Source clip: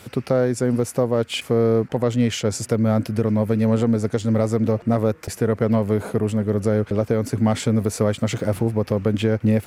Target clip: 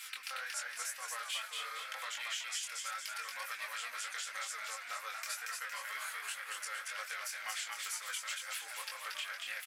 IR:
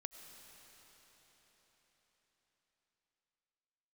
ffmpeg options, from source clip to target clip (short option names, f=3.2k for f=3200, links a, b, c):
-filter_complex "[0:a]highpass=f=1.5k:w=0.5412,highpass=f=1.5k:w=1.3066,aecho=1:1:3.8:0.69,acompressor=threshold=-40dB:ratio=6,flanger=delay=18.5:depth=7.5:speed=2,asplit=2[a][b];[b]asplit=7[c][d][e][f][g][h][i];[c]adelay=231,afreqshift=74,volume=-3dB[j];[d]adelay=462,afreqshift=148,volume=-9dB[k];[e]adelay=693,afreqshift=222,volume=-15dB[l];[f]adelay=924,afreqshift=296,volume=-21.1dB[m];[g]adelay=1155,afreqshift=370,volume=-27.1dB[n];[h]adelay=1386,afreqshift=444,volume=-33.1dB[o];[i]adelay=1617,afreqshift=518,volume=-39.1dB[p];[j][k][l][m][n][o][p]amix=inputs=7:normalize=0[q];[a][q]amix=inputs=2:normalize=0,volume=4dB"